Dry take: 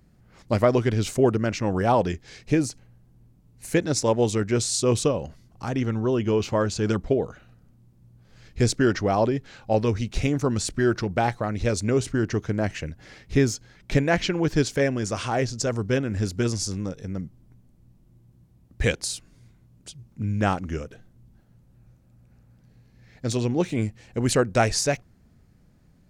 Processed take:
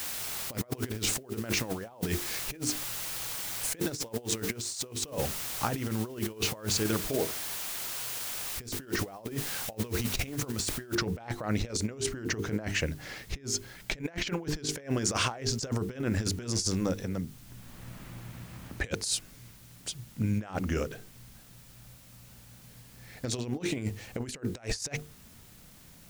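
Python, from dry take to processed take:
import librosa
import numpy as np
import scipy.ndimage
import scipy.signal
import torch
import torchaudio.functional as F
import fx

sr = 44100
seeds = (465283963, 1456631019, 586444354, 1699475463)

y = fx.comb_fb(x, sr, f0_hz=320.0, decay_s=0.61, harmonics='all', damping=0.0, mix_pct=60, at=(6.77, 8.6))
y = fx.noise_floor_step(y, sr, seeds[0], at_s=10.95, before_db=-42, after_db=-62, tilt_db=0.0)
y = fx.band_squash(y, sr, depth_pct=70, at=(17.03, 18.84))
y = fx.low_shelf(y, sr, hz=320.0, db=-5.0)
y = fx.hum_notches(y, sr, base_hz=50, count=9)
y = fx.over_compress(y, sr, threshold_db=-32.0, ratio=-0.5)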